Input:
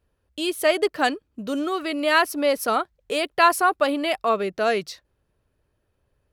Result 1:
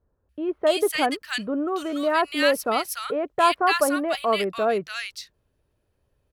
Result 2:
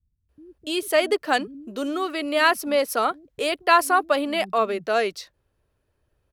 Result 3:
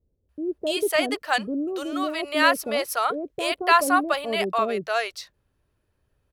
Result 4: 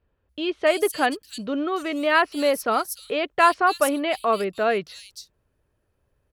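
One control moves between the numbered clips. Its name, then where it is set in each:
bands offset in time, split: 1500, 200, 550, 3900 Hz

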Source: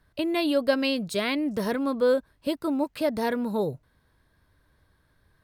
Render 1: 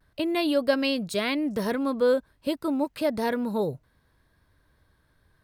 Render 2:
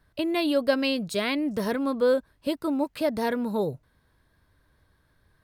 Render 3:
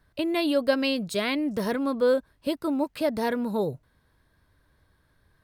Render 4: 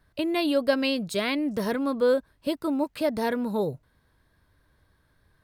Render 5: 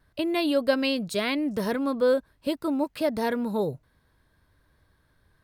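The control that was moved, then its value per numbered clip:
vibrato, rate: 0.31, 6.3, 9.6, 3.3, 1.1 Hz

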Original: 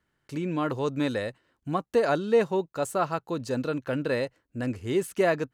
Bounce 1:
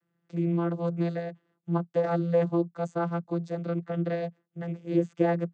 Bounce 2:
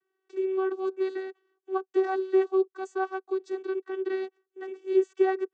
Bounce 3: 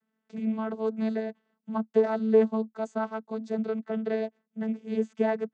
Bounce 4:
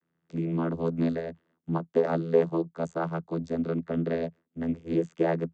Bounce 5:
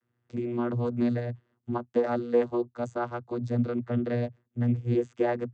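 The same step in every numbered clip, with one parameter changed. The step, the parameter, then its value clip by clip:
vocoder, frequency: 170, 380, 220, 83, 120 Hz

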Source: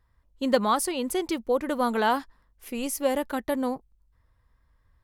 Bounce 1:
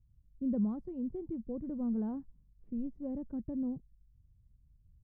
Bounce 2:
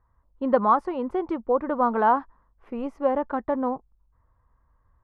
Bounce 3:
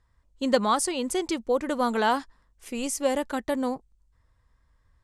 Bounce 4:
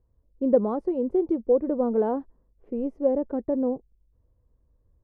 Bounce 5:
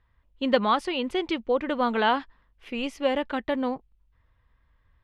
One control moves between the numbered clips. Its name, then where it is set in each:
synth low-pass, frequency: 160, 1100, 7900, 460, 3000 Hz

